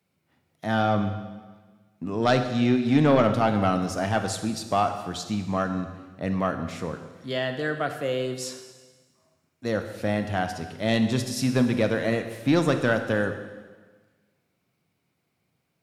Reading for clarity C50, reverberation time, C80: 8.5 dB, 1.4 s, 10.0 dB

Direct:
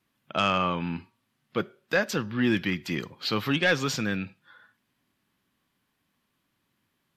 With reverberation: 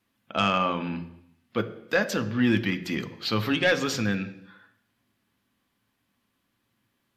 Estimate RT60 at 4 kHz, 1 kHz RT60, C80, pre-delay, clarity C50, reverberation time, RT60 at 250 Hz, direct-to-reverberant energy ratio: 0.85 s, 0.85 s, 16.0 dB, 3 ms, 14.0 dB, 0.80 s, 0.85 s, 8.5 dB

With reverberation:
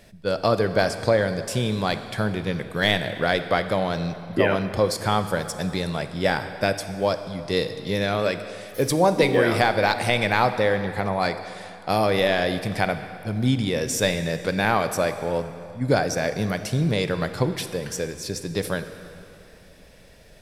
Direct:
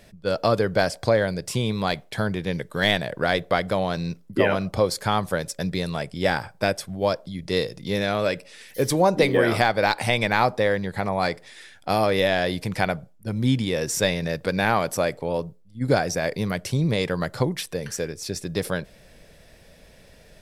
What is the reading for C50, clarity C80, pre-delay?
10.0 dB, 11.0 dB, 28 ms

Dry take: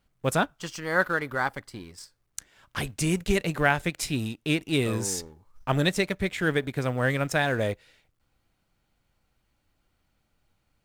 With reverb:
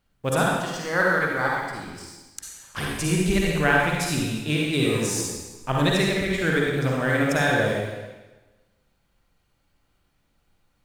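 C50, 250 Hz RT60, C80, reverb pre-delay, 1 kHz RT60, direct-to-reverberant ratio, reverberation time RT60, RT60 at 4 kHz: −2.5 dB, 1.2 s, 1.0 dB, 39 ms, 1.2 s, −3.0 dB, 1.2 s, 1.1 s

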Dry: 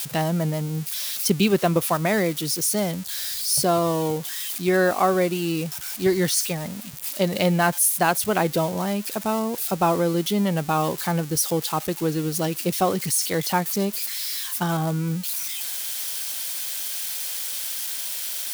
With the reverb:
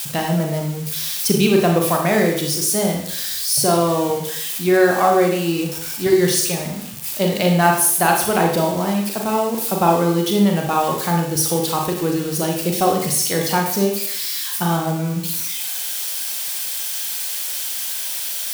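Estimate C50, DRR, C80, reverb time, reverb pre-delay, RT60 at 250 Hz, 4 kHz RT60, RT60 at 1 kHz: 4.0 dB, 1.0 dB, 8.0 dB, 0.65 s, 32 ms, 0.70 s, 0.65 s, 0.70 s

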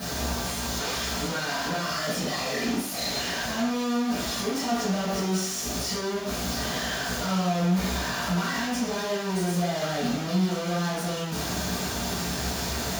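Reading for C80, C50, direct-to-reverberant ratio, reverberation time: 5.0 dB, 1.5 dB, −11.5 dB, 0.70 s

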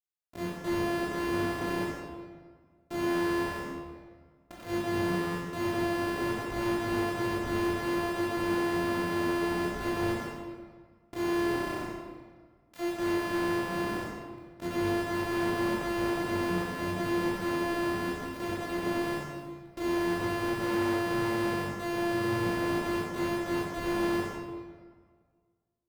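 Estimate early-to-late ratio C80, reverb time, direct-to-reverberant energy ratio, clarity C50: 1.0 dB, 1.7 s, −6.5 dB, −1.5 dB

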